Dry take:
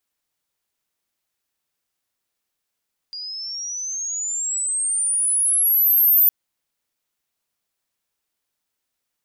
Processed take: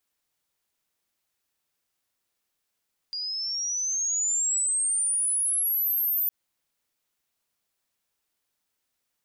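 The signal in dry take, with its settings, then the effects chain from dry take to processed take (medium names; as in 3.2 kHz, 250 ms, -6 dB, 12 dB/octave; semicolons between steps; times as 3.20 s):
sweep logarithmic 4.8 kHz -> 14 kHz -29.5 dBFS -> -11 dBFS 3.16 s
peak limiter -22.5 dBFS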